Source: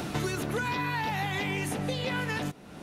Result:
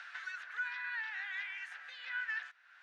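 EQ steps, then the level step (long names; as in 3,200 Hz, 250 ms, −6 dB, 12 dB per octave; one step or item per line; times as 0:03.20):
four-pole ladder high-pass 1,500 Hz, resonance 75%
high-frequency loss of the air 150 metres
0.0 dB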